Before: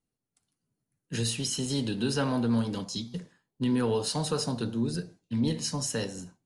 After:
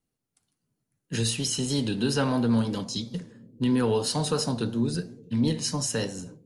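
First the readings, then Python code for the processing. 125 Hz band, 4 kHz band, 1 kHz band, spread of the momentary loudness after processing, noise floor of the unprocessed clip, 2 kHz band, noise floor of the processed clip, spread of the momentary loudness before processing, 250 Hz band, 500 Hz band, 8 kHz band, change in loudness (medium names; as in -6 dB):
+3.0 dB, +3.0 dB, +3.0 dB, 9 LU, under -85 dBFS, +3.0 dB, -83 dBFS, 9 LU, +3.0 dB, +3.0 dB, +3.0 dB, +3.0 dB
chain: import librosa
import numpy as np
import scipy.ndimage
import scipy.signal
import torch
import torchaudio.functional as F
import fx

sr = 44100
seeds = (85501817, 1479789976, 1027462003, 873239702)

y = fx.vibrato(x, sr, rate_hz=3.0, depth_cents=25.0)
y = fx.echo_bbd(y, sr, ms=285, stages=1024, feedback_pct=69, wet_db=-22.5)
y = F.gain(torch.from_numpy(y), 3.0).numpy()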